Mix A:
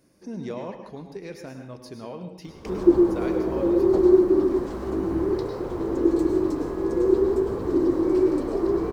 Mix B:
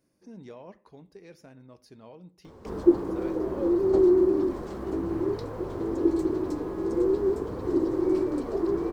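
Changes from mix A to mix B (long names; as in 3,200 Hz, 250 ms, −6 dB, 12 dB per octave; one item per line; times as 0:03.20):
speech −9.0 dB
reverb: off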